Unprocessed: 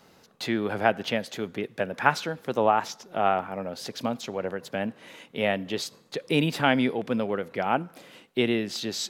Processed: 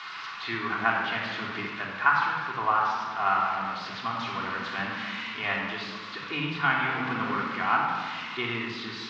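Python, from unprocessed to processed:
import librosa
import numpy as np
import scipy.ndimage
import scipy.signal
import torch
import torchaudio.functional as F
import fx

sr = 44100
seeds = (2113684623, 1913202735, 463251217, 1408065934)

y = x + 0.5 * 10.0 ** (-19.5 / 20.0) * np.diff(np.sign(x), prepend=np.sign(x[:1]))
y = fx.low_shelf_res(y, sr, hz=790.0, db=-10.5, q=3.0)
y = fx.room_shoebox(y, sr, seeds[0], volume_m3=2400.0, walls='mixed', distance_m=3.3)
y = fx.rider(y, sr, range_db=3, speed_s=0.5)
y = scipy.ndimage.gaussian_filter1d(y, 2.8, mode='constant')
y = F.gain(torch.from_numpy(y), -2.5).numpy()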